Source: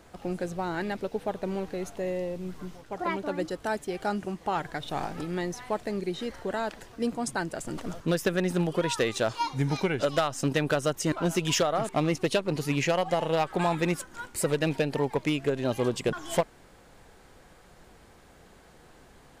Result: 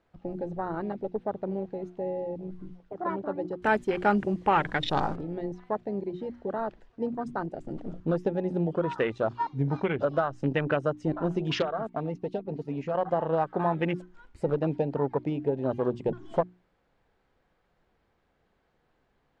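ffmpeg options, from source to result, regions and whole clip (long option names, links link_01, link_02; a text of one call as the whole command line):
ffmpeg -i in.wav -filter_complex "[0:a]asettb=1/sr,asplit=3[link_01][link_02][link_03];[link_01]atrim=end=3.624[link_04];[link_02]atrim=start=3.62:end=5.16,asetpts=PTS-STARTPTS,afade=type=in:duration=0.004:curve=qsin,afade=type=out:start_time=1.536:duration=0.004:curve=qsin,acontrast=88,aemphasis=mode=production:type=75fm,bandreject=frequency=690:width=7.4[link_05];[link_03]atrim=start=5.156[link_06];[link_04][link_05]acrossfade=duration=0.004:curve1=hsin:curve2=qsin[link_07];[link_07][link_06]acrossfade=duration=0.004:curve1=qsin:curve2=hsin,asettb=1/sr,asplit=3[link_08][link_09][link_10];[link_08]atrim=end=11.624[link_11];[link_09]atrim=start=11.62:end=12.95,asetpts=PTS-STARTPTS,afade=type=in:duration=0.004:curve=qsin,afade=type=out:start_time=1.326:duration=0.004:curve=qsin,agate=range=-8dB:threshold=-33dB:ratio=16:release=100:detection=peak,aecho=1:1:4.4:0.47,atrim=end_sample=58653,acompressor=threshold=-35dB:ratio=1.5:attack=3.2:release=140:knee=1:detection=peak[link_12];[link_10]atrim=start=12.946[link_13];[link_11][link_12]acrossfade=duration=0.004:curve1=hsin:curve2=qsin[link_14];[link_14][link_13]acrossfade=duration=0.004:curve1=qsin:curve2=hsin,afwtdn=0.0282,lowpass=3600,bandreject=frequency=60:width_type=h:width=6,bandreject=frequency=120:width_type=h:width=6,bandreject=frequency=180:width_type=h:width=6,bandreject=frequency=240:width_type=h:width=6,bandreject=frequency=300:width_type=h:width=6,bandreject=frequency=360:width_type=h:width=6" out.wav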